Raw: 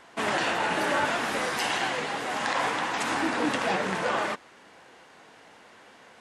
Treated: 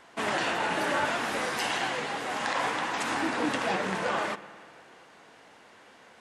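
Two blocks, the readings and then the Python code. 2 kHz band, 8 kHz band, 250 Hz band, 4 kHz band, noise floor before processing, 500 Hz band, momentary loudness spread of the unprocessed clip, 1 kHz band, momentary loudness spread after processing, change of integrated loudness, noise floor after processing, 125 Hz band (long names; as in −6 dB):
−2.0 dB, −2.0 dB, −2.0 dB, −2.0 dB, −53 dBFS, −2.0 dB, 4 LU, −2.0 dB, 4 LU, −2.0 dB, −55 dBFS, −1.5 dB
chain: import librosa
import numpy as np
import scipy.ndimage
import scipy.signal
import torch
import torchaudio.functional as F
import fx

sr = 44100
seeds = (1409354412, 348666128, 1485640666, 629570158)

y = fx.rev_spring(x, sr, rt60_s=2.5, pass_ms=(52, 57), chirp_ms=80, drr_db=15.0)
y = F.gain(torch.from_numpy(y), -2.0).numpy()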